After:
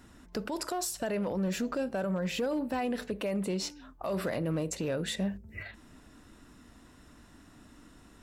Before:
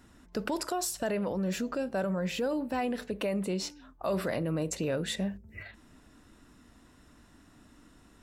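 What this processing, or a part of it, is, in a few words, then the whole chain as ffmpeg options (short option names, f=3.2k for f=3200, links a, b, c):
limiter into clipper: -af "alimiter=level_in=2dB:limit=-24dB:level=0:latency=1:release=297,volume=-2dB,asoftclip=type=hard:threshold=-28dB,volume=2.5dB"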